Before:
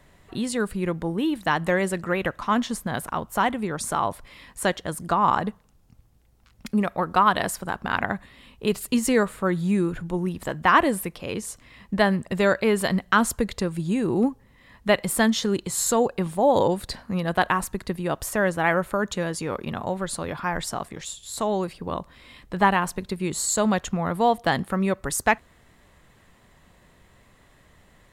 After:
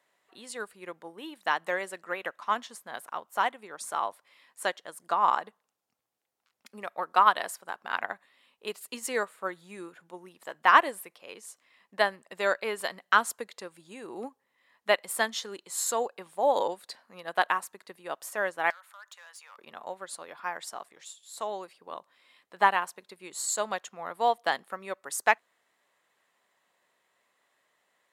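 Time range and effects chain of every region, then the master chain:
18.7–19.58 HPF 880 Hz 24 dB/oct + compressor 4:1, threshold -31 dBFS + overloaded stage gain 31.5 dB
whole clip: HPF 550 Hz 12 dB/oct; upward expander 1.5:1, over -39 dBFS

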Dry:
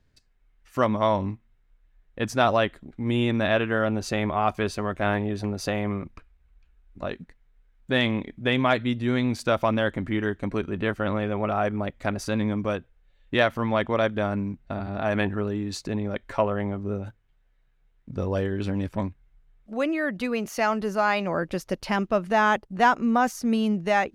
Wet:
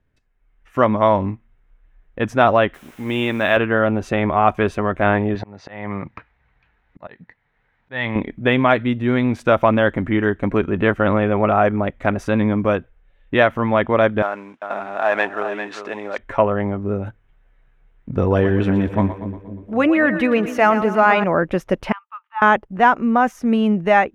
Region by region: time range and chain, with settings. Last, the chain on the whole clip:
2.74–3.57 tilt +2.5 dB/oct + requantised 8-bit, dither triangular
5.35–8.16 speaker cabinet 110–6200 Hz, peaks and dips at 120 Hz +5 dB, 250 Hz -4 dB, 370 Hz -5 dB, 880 Hz +7 dB, 1900 Hz +8 dB, 4300 Hz +9 dB + auto swell 0.54 s
14.22–16.18 CVSD 64 kbps + BPF 650–5500 Hz + echo 0.397 s -9 dB
18.19–21.24 HPF 42 Hz + notch 560 Hz, Q 11 + split-band echo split 500 Hz, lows 0.256 s, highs 0.118 s, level -10.5 dB
21.92–22.42 rippled Chebyshev high-pass 860 Hz, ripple 9 dB + tape spacing loss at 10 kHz 43 dB + upward expander, over -52 dBFS
whole clip: bell 4500 Hz -10 dB 0.35 oct; AGC gain up to 12 dB; tone controls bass -2 dB, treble -14 dB

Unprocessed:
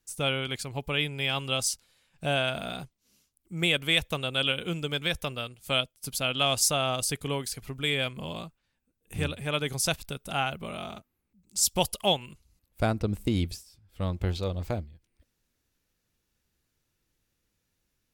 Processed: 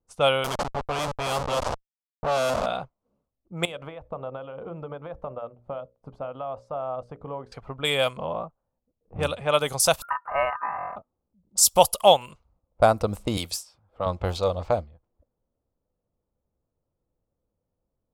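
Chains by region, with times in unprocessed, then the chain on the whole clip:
0.44–2.66 de-esser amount 70% + Schmitt trigger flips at -34.5 dBFS
3.65–7.52 compressor 12:1, threshold -32 dBFS + high shelf 2400 Hz -11 dB + notches 60/120/180/240/300/360/420/480/540/600 Hz
8.17–9.23 median filter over 5 samples + high shelf 2600 Hz -10.5 dB
10.02–10.96 inverse Chebyshev band-stop 2200–8100 Hz + bell 400 Hz +12.5 dB 0.21 oct + ring modulator 1400 Hz
13.37–14.06 tilt +2.5 dB/oct + three-band squash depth 40%
whole clip: high shelf 3800 Hz +9.5 dB; low-pass opened by the level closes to 430 Hz, open at -24 dBFS; band shelf 800 Hz +12.5 dB; gain -1 dB

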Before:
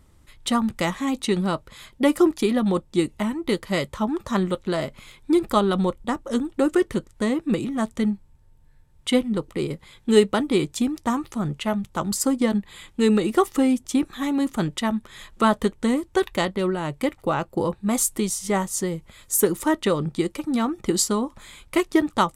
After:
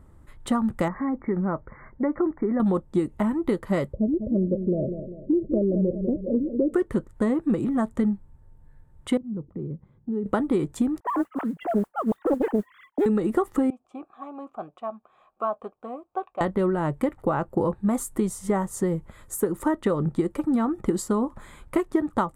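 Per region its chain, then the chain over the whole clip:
0.88–2.6 brick-wall FIR low-pass 2300 Hz + compressor 1.5:1, threshold -35 dBFS
3.93–6.74 Chebyshev low-pass 610 Hz, order 6 + feedback echo 0.197 s, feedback 43%, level -11 dB
9.17–10.26 band-pass 150 Hz, Q 1.1 + compressor 2:1, threshold -36 dBFS
11–13.06 sine-wave speech + modulation noise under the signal 23 dB + Doppler distortion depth 0.97 ms
13.7–16.41 vowel filter a + high shelf 11000 Hz -3 dB
whole clip: band shelf 3700 Hz -8.5 dB; compressor, threshold -23 dBFS; high shelf 2900 Hz -12 dB; gain +4 dB

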